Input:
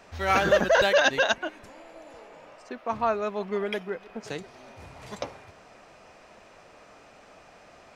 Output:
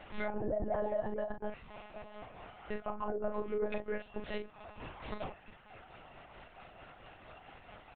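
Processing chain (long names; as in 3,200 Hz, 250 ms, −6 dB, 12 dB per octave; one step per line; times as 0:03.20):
pitch shift by two crossfaded delay taps +1.5 semitones
treble cut that deepens with the level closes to 370 Hz, closed at −23 dBFS
reverb reduction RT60 1.1 s
brickwall limiter −28.5 dBFS, peak gain reduction 11.5 dB
soft clipping −25 dBFS, distortion −28 dB
double-tracking delay 44 ms −7 dB
one-pitch LPC vocoder at 8 kHz 210 Hz
level +1.5 dB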